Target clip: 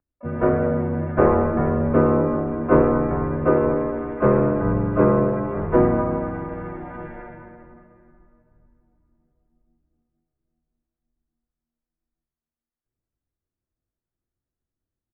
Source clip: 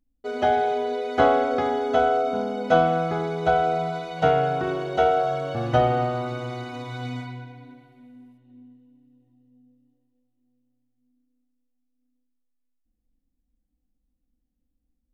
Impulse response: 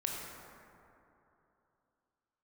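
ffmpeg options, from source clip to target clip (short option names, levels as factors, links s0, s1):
-filter_complex "[0:a]lowshelf=f=260:t=q:w=3:g=-7,bandreject=f=60:t=h:w=6,bandreject=f=120:t=h:w=6,bandreject=f=180:t=h:w=6,bandreject=f=240:t=h:w=6,bandreject=f=300:t=h:w=6,bandreject=f=360:t=h:w=6,bandreject=f=420:t=h:w=6,bandreject=f=480:t=h:w=6,aeval=exprs='0.668*(cos(1*acos(clip(val(0)/0.668,-1,1)))-cos(1*PI/2))+0.0531*(cos(4*acos(clip(val(0)/0.668,-1,1)))-cos(4*PI/2))':c=same,asplit=4[s0][s1][s2][s3];[s1]asetrate=37084,aresample=44100,atempo=1.18921,volume=0.794[s4];[s2]asetrate=52444,aresample=44100,atempo=0.840896,volume=0.794[s5];[s3]asetrate=88200,aresample=44100,atempo=0.5,volume=0.251[s6];[s0][s4][s5][s6]amix=inputs=4:normalize=0,asplit=2[s7][s8];[1:a]atrim=start_sample=2205,adelay=105[s9];[s8][s9]afir=irnorm=-1:irlink=0,volume=0.224[s10];[s7][s10]amix=inputs=2:normalize=0,highpass=f=280:t=q:w=0.5412,highpass=f=280:t=q:w=1.307,lowpass=f=2100:t=q:w=0.5176,lowpass=f=2100:t=q:w=0.7071,lowpass=f=2100:t=q:w=1.932,afreqshift=-260,volume=0.794"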